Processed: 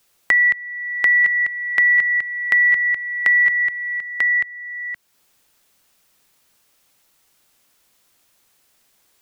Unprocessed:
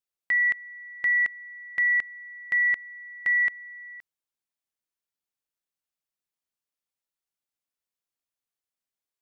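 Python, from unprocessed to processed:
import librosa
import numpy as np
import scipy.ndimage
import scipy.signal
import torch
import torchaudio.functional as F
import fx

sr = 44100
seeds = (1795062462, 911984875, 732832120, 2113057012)

p1 = x + fx.echo_single(x, sr, ms=942, db=-6.5, dry=0)
p2 = fx.band_squash(p1, sr, depth_pct=70)
y = F.gain(torch.from_numpy(p2), 7.5).numpy()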